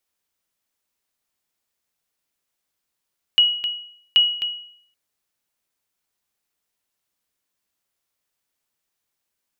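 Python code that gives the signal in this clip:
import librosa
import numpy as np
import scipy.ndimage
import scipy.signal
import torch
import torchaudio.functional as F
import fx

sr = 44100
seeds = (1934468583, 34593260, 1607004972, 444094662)

y = fx.sonar_ping(sr, hz=2910.0, decay_s=0.62, every_s=0.78, pings=2, echo_s=0.26, echo_db=-9.0, level_db=-8.0)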